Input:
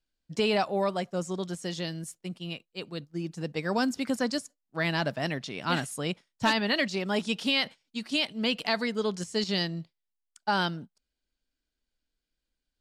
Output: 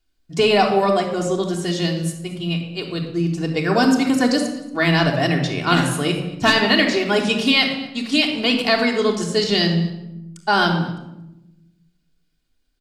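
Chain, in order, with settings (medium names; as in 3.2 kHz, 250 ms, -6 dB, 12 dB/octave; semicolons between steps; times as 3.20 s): on a send: delay 231 ms -20.5 dB; on the sum: simulated room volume 3400 m³, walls furnished, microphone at 3.3 m; trim +8 dB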